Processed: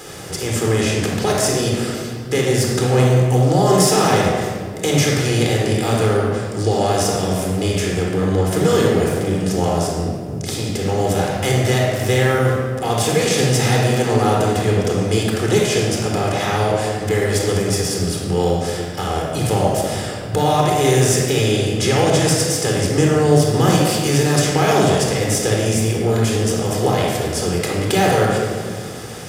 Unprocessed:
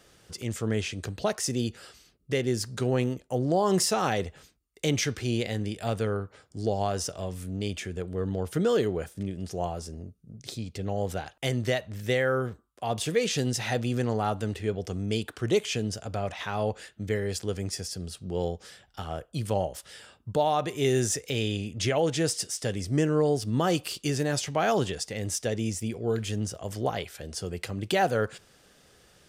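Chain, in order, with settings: spectral levelling over time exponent 0.6; treble shelf 9.5 kHz +10 dB; simulated room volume 2900 m³, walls mixed, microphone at 4 m

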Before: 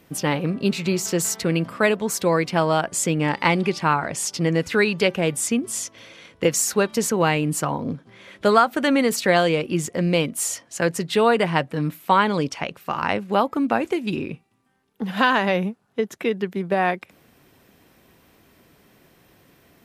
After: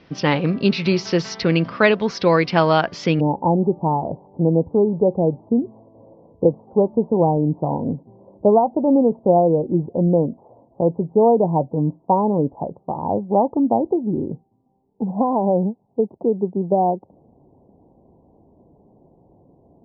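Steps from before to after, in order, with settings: steep low-pass 5.5 kHz 72 dB/octave, from 3.19 s 920 Hz; trim +4 dB

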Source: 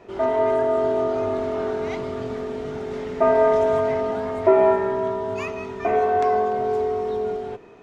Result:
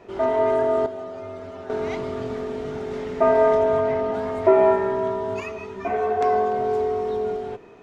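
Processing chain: 0.86–1.70 s: inharmonic resonator 91 Hz, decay 0.25 s, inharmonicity 0.002; 3.55–4.14 s: low-pass 3.5 kHz 6 dB/octave; 5.40–6.21 s: three-phase chorus

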